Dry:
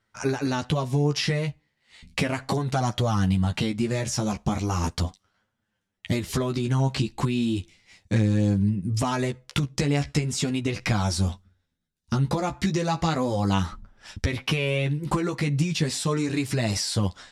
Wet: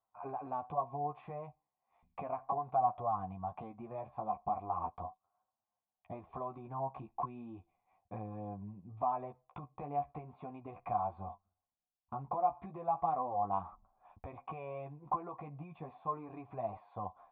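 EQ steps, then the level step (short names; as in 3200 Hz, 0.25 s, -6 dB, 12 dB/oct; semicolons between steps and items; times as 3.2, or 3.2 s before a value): vocal tract filter a; +3.5 dB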